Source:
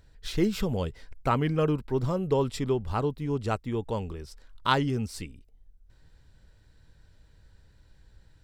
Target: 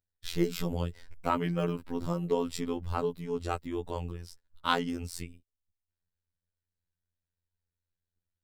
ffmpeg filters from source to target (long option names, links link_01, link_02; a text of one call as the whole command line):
ffmpeg -i in.wav -af "agate=range=-29dB:threshold=-45dB:ratio=16:detection=peak,afftfilt=real='hypot(re,im)*cos(PI*b)':imag='0':win_size=2048:overlap=0.75,highshelf=frequency=11000:gain=10" out.wav